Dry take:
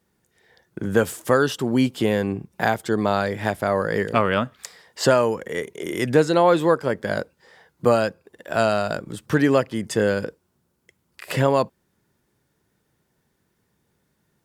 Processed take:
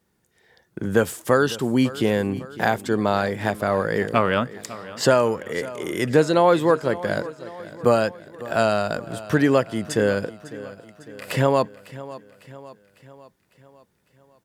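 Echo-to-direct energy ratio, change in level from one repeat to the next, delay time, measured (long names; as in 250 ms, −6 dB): −15.5 dB, −5.5 dB, 552 ms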